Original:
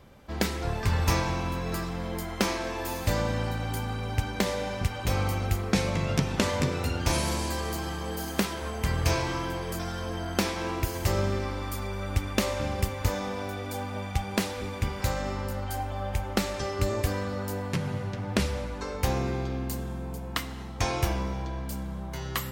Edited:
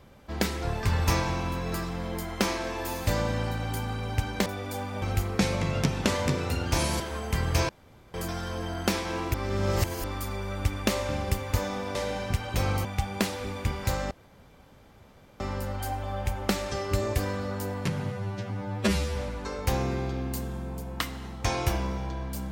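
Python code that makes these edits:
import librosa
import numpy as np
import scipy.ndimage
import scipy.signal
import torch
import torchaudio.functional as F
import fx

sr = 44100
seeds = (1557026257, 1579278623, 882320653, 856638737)

y = fx.edit(x, sr, fx.swap(start_s=4.46, length_s=0.9, other_s=13.46, other_length_s=0.56),
    fx.cut(start_s=7.34, length_s=1.17),
    fx.room_tone_fill(start_s=9.2, length_s=0.45),
    fx.reverse_span(start_s=10.85, length_s=0.7),
    fx.insert_room_tone(at_s=15.28, length_s=1.29),
    fx.stretch_span(start_s=18.0, length_s=0.52, factor=2.0), tone=tone)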